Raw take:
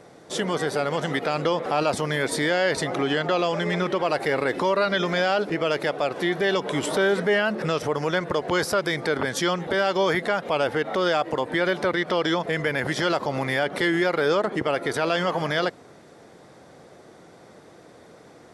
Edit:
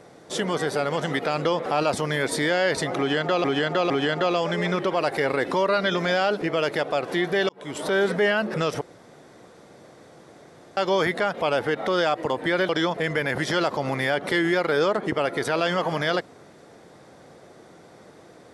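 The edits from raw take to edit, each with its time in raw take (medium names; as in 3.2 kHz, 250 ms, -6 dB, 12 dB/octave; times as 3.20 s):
2.98–3.44 s: loop, 3 plays
6.57–7.10 s: fade in
7.89–9.85 s: room tone
11.77–12.18 s: delete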